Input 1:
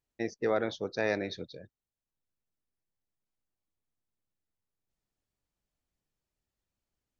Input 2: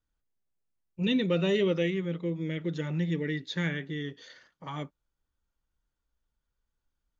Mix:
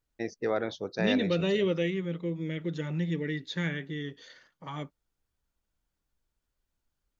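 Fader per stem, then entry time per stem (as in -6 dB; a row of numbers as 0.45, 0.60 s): -0.5, -1.0 dB; 0.00, 0.00 s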